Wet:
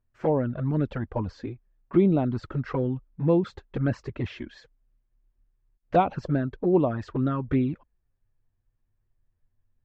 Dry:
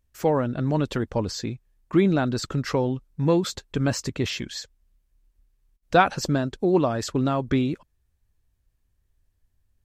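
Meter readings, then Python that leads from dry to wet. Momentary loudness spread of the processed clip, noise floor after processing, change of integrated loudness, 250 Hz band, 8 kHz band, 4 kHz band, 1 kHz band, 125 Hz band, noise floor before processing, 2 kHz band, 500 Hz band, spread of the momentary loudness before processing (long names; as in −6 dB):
12 LU, −75 dBFS, −2.0 dB, −1.5 dB, below −25 dB, −16.0 dB, −4.0 dB, −1.0 dB, −72 dBFS, −10.0 dB, −2.0 dB, 10 LU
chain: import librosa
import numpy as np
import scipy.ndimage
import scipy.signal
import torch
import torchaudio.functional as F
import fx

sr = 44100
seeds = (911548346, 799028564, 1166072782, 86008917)

y = scipy.signal.sosfilt(scipy.signal.butter(2, 1800.0, 'lowpass', fs=sr, output='sos'), x)
y = fx.env_flanger(y, sr, rest_ms=8.6, full_db=-16.5)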